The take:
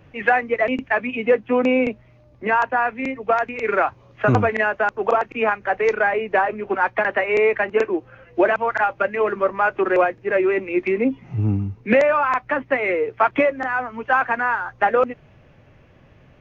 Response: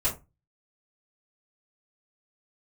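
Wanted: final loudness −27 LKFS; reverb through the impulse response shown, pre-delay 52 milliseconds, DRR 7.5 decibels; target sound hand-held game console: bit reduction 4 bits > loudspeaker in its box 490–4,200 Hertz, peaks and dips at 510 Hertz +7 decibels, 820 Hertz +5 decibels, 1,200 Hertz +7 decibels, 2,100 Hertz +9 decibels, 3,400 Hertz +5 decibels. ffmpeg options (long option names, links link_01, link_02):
-filter_complex "[0:a]asplit=2[link_01][link_02];[1:a]atrim=start_sample=2205,adelay=52[link_03];[link_02][link_03]afir=irnorm=-1:irlink=0,volume=-16dB[link_04];[link_01][link_04]amix=inputs=2:normalize=0,acrusher=bits=3:mix=0:aa=0.000001,highpass=490,equalizer=frequency=510:width_type=q:width=4:gain=7,equalizer=frequency=820:width_type=q:width=4:gain=5,equalizer=frequency=1200:width_type=q:width=4:gain=7,equalizer=frequency=2100:width_type=q:width=4:gain=9,equalizer=frequency=3400:width_type=q:width=4:gain=5,lowpass=frequency=4200:width=0.5412,lowpass=frequency=4200:width=1.3066,volume=-11dB"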